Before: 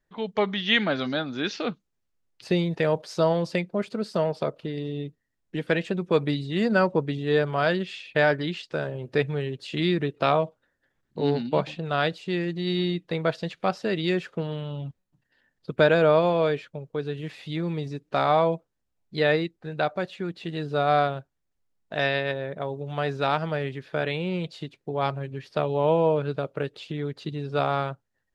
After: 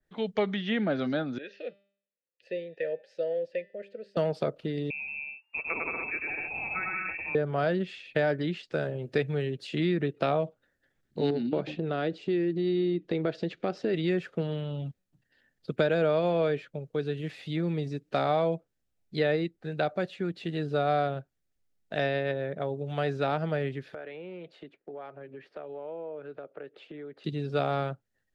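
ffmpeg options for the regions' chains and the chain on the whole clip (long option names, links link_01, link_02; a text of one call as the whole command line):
ffmpeg -i in.wav -filter_complex "[0:a]asettb=1/sr,asplit=3[link_01][link_02][link_03];[link_01]atrim=end=1.384[link_04];[link_02]atrim=start=1.38:end=4.17,asetpts=PTS-STARTPTS,afade=type=in:duration=0.004:curve=qsin,afade=type=out:start_time=2.786:duration=0.004:curve=qsin,asplit=3[link_05][link_06][link_07];[link_05]bandpass=frequency=530:width_type=q:width=8,volume=0dB[link_08];[link_06]bandpass=frequency=1840:width_type=q:width=8,volume=-6dB[link_09];[link_07]bandpass=frequency=2480:width_type=q:width=8,volume=-9dB[link_10];[link_08][link_09][link_10]amix=inputs=3:normalize=0,bandreject=frequency=198.7:width_type=h:width=4,bandreject=frequency=397.4:width_type=h:width=4,bandreject=frequency=596.1:width_type=h:width=4,bandreject=frequency=794.8:width_type=h:width=4,bandreject=frequency=993.5:width_type=h:width=4,bandreject=frequency=1192.2:width_type=h:width=4,bandreject=frequency=1390.9:width_type=h:width=4,bandreject=frequency=1589.6:width_type=h:width=4,bandreject=frequency=1788.3:width_type=h:width=4,bandreject=frequency=1987:width_type=h:width=4,bandreject=frequency=2185.7:width_type=h:width=4,bandreject=frequency=2384.4:width_type=h:width=4,bandreject=frequency=2583.1:width_type=h:width=4,bandreject=frequency=2781.8:width_type=h:width=4,bandreject=frequency=2980.5:width_type=h:width=4,bandreject=frequency=3179.2:width_type=h:width=4,bandreject=frequency=3377.9:width_type=h:width=4,bandreject=frequency=3576.6:width_type=h:width=4,bandreject=frequency=3775.3:width_type=h:width=4,bandreject=frequency=3974:width_type=h:width=4,bandreject=frequency=4172.7:width_type=h:width=4,bandreject=frequency=4371.4:width_type=h:width=4,bandreject=frequency=4570.1:width_type=h:width=4,bandreject=frequency=4768.8:width_type=h:width=4,bandreject=frequency=4967.5:width_type=h:width=4,bandreject=frequency=5166.2:width_type=h:width=4,bandreject=frequency=5364.9:width_type=h:width=4[link_11];[link_03]atrim=start=4.166[link_12];[link_04][link_11]acrossfade=duration=0.004:curve1=hsin:curve2=qsin[link_13];[link_13][link_12]acrossfade=duration=0.004:curve1=qsin:curve2=hsin,asettb=1/sr,asplit=3[link_14][link_15][link_16];[link_14]atrim=end=4.904[link_17];[link_15]atrim=start=4.9:end=7.35,asetpts=PTS-STARTPTS,afade=type=in:duration=0.004:curve=qsin,afade=type=out:start_time=2.446:duration=0.004:curve=qsin,lowpass=frequency=2400:width_type=q:width=0.5098,lowpass=frequency=2400:width_type=q:width=0.6013,lowpass=frequency=2400:width_type=q:width=0.9,lowpass=frequency=2400:width_type=q:width=2.563,afreqshift=-2800,aecho=1:1:100|175|231.2|273.4|305.1:0.794|0.631|0.501|0.398|0.316,atrim=end_sample=108045[link_18];[link_16]atrim=start=7.346[link_19];[link_17][link_18]acrossfade=duration=0.004:curve1=hsin:curve2=qsin[link_20];[link_20][link_19]acrossfade=duration=0.004:curve1=qsin:curve2=hsin,asettb=1/sr,asplit=3[link_21][link_22][link_23];[link_21]atrim=end=11.304[link_24];[link_22]atrim=start=11.3:end=13.94,asetpts=PTS-STARTPTS,afade=type=in:duration=0.004:curve=qsin,afade=type=out:start_time=2.636:duration=0.004:curve=qsin,lowpass=5900,equalizer=frequency=340:width_type=o:width=1:gain=10.5,acompressor=threshold=-28dB:ratio=2:attack=3.2:release=140:knee=1:detection=peak[link_25];[link_23]atrim=start=13.936[link_26];[link_24][link_25]acrossfade=duration=0.004:curve1=hsin:curve2=qsin[link_27];[link_27][link_26]acrossfade=duration=0.004:curve1=qsin:curve2=hsin,asettb=1/sr,asplit=3[link_28][link_29][link_30];[link_28]atrim=end=23.944[link_31];[link_29]atrim=start=23.94:end=27.24,asetpts=PTS-STARTPTS,afade=type=in:duration=0.004:curve=qsin,afade=type=out:start_time=3.296:duration=0.004:curve=qsin,acrossover=split=260 2300:gain=0.0891 1 0.0794[link_32][link_33][link_34];[link_32][link_33][link_34]amix=inputs=3:normalize=0,acompressor=threshold=-40dB:ratio=3:attack=3.2:release=140:knee=1:detection=peak[link_35];[link_30]atrim=start=27.236[link_36];[link_31][link_35]acrossfade=duration=0.004:curve1=hsin:curve2=qsin[link_37];[link_37][link_36]acrossfade=duration=0.004:curve1=qsin:curve2=hsin,equalizer=frequency=1000:width_type=o:width=0.48:gain=-8.5,acrossover=split=98|1000|2400[link_38][link_39][link_40][link_41];[link_38]acompressor=threshold=-59dB:ratio=4[link_42];[link_39]acompressor=threshold=-23dB:ratio=4[link_43];[link_40]acompressor=threshold=-37dB:ratio=4[link_44];[link_41]acompressor=threshold=-40dB:ratio=4[link_45];[link_42][link_43][link_44][link_45]amix=inputs=4:normalize=0,adynamicequalizer=threshold=0.00447:dfrequency=2500:dqfactor=0.7:tfrequency=2500:tqfactor=0.7:attack=5:release=100:ratio=0.375:range=4:mode=cutabove:tftype=highshelf" out.wav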